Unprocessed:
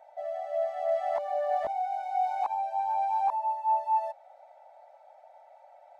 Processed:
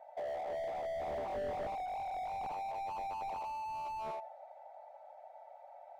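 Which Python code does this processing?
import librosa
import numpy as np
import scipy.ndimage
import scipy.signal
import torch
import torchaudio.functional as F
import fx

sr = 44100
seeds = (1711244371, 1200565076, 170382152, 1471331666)

y = fx.high_shelf(x, sr, hz=2200.0, db=-10.0)
y = fx.notch(y, sr, hz=1400.0, q=11.0)
y = fx.echo_feedback(y, sr, ms=83, feedback_pct=33, wet_db=-7.5)
y = fx.slew_limit(y, sr, full_power_hz=8.2)
y = y * librosa.db_to_amplitude(1.0)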